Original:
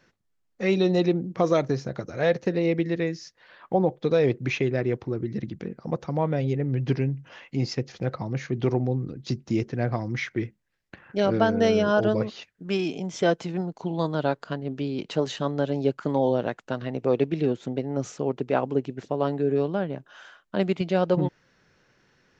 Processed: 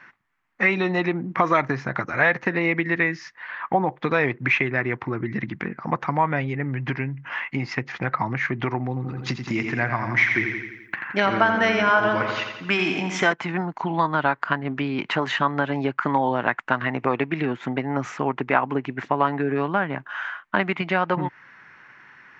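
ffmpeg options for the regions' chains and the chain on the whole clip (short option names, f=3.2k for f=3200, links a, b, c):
-filter_complex "[0:a]asettb=1/sr,asplit=3[a][b][c];[a]atrim=end=8.884[d];[b]atrim=start=8.88:end=13.33,asetpts=PTS-STARTPTS,afade=t=in:d=0.004:c=qsin,afade=t=out:st=4.446:d=0.004:c=qsin,aemphasis=mode=production:type=50fm,aecho=1:1:85|170|255|340|425|510|595:0.422|0.232|0.128|0.0702|0.0386|0.0212|0.0117,atrim=end_sample=196245[e];[c]atrim=start=13.326[f];[d][e]acrossfade=d=0.004:c1=hsin:c2=qsin[g];[g][f]acrossfade=d=0.004:c1=qsin:c2=hsin,equalizer=f=125:t=o:w=1:g=8,equalizer=f=250:t=o:w=1:g=4,equalizer=f=500:t=o:w=1:g=-11,equalizer=f=1k:t=o:w=1:g=9,equalizer=f=2k:t=o:w=1:g=11,equalizer=f=4k:t=o:w=1:g=-3,acompressor=threshold=-22dB:ratio=6,bass=f=250:g=-15,treble=f=4k:g=-13,volume=9dB"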